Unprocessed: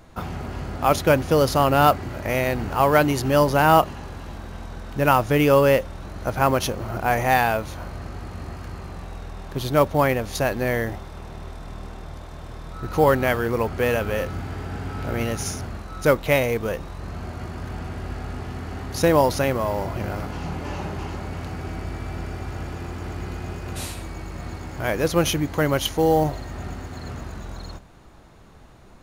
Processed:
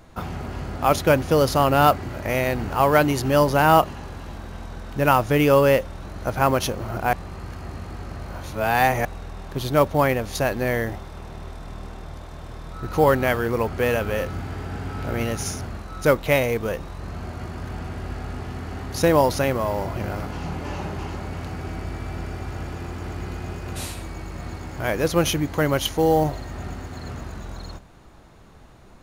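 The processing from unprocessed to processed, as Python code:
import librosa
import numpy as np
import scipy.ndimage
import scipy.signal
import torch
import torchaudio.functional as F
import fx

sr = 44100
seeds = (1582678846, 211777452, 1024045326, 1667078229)

y = fx.edit(x, sr, fx.reverse_span(start_s=7.13, length_s=1.92), tone=tone)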